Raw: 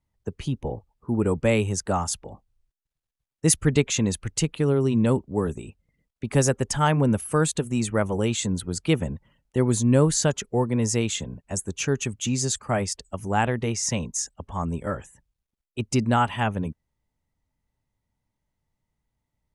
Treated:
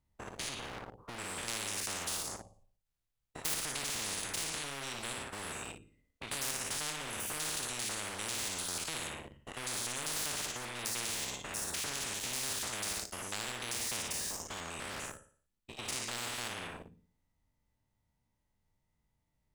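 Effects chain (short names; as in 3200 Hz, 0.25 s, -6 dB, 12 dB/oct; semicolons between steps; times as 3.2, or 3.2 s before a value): stepped spectrum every 0.1 s; on a send: flutter echo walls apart 9.9 m, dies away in 0.49 s; on the sum: sample leveller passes 2; spectral compressor 10:1; gain -8.5 dB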